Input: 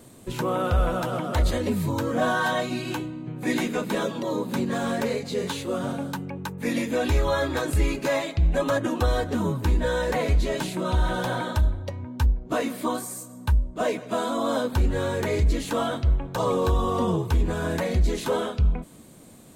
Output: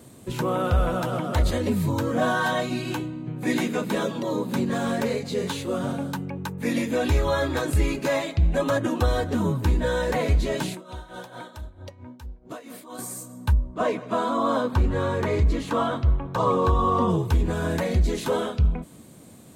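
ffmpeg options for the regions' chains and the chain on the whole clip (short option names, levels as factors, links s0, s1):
-filter_complex "[0:a]asettb=1/sr,asplit=3[s0][s1][s2];[s0]atrim=end=10.744[s3];[s1]atrim=start=10.74:end=12.99,asetpts=PTS-STARTPTS,afade=t=in:d=0.004:c=qsin,afade=t=out:st=2.246:d=0.004:c=qsin,bass=f=250:g=-7,treble=f=4000:g=2,acompressor=threshold=0.0141:ratio=2.5:attack=3.2:release=140:knee=1:detection=peak,tremolo=f=4.5:d=0.74[s4];[s2]atrim=start=12.986[s5];[s3][s4]acrossfade=d=0.004:c1=hsin:c2=qsin[s6];[s6][s5]acrossfade=d=0.004:c1=qsin:c2=hsin,asettb=1/sr,asplit=3[s7][s8][s9];[s7]atrim=end=13.534[s10];[s8]atrim=start=13.53:end=17.1,asetpts=PTS-STARTPTS,afade=t=in:d=0.004:c=qsin,afade=t=out:st=3.566:d=0.004:c=qsin,lowpass=f=3500:p=1,equalizer=f=1100:t=o:w=0.41:g=7.5[s11];[s9]atrim=start=17.096[s12];[s10][s11]acrossfade=d=0.004:c1=hsin:c2=qsin[s13];[s13][s12]acrossfade=d=0.004:c1=qsin:c2=hsin,highpass=65,lowshelf=f=150:g=5"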